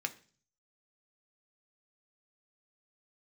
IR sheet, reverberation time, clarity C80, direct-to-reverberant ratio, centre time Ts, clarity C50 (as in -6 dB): 0.40 s, 21.0 dB, 6.0 dB, 5 ms, 17.0 dB